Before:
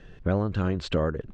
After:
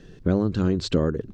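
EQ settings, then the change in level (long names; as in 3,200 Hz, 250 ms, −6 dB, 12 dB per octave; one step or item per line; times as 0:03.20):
low-shelf EQ 120 Hz −10.5 dB
flat-topped bell 1,300 Hz −10.5 dB 2.9 octaves
mains-hum notches 50/100 Hz
+8.5 dB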